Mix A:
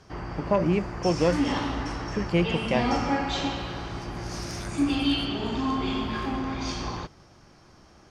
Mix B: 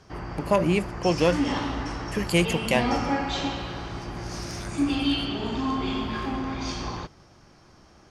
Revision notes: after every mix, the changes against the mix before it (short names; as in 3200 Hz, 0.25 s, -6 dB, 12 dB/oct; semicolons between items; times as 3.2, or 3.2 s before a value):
first voice: remove tape spacing loss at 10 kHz 28 dB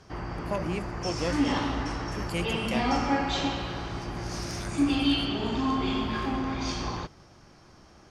first voice -10.0 dB